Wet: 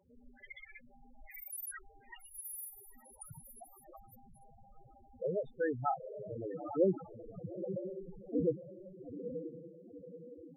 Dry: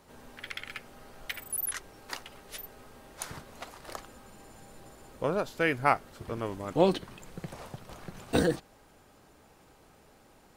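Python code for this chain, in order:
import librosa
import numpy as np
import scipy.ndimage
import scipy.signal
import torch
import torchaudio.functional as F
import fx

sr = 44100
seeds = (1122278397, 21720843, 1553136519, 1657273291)

y = fx.echo_diffused(x, sr, ms=914, feedback_pct=43, wet_db=-7.0)
y = fx.over_compress(y, sr, threshold_db=-38.0, ratio=-1.0, at=(1.25, 1.77), fade=0.02)
y = fx.spec_topn(y, sr, count=4)
y = y * librosa.db_to_amplitude(-2.5)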